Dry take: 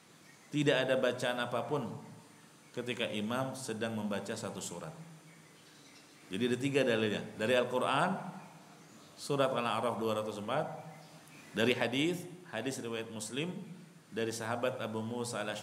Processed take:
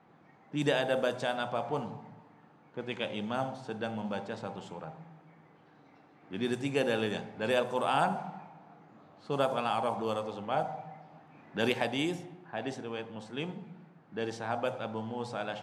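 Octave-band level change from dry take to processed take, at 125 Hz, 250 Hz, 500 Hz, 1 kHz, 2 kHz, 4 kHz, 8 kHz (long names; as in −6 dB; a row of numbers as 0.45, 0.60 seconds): 0.0, 0.0, +1.0, +4.0, 0.0, −0.5, −7.0 decibels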